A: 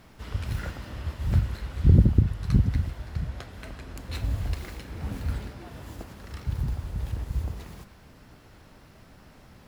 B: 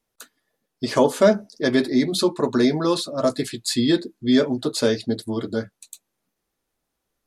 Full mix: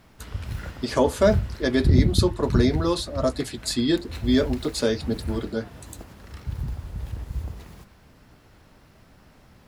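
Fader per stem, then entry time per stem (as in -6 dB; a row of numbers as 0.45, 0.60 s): -1.5, -3.0 dB; 0.00, 0.00 s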